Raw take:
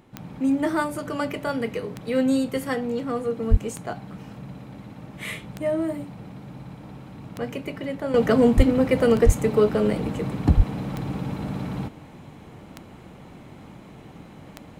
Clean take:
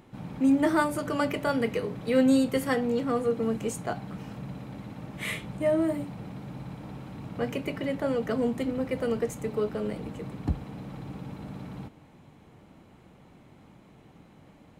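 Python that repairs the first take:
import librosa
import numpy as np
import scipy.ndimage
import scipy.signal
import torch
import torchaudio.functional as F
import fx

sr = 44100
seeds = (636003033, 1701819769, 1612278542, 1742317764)

y = fx.fix_declick_ar(x, sr, threshold=10.0)
y = fx.fix_deplosive(y, sr, at_s=(3.5, 8.56, 9.25, 10.56))
y = fx.fix_level(y, sr, at_s=8.14, step_db=-10.0)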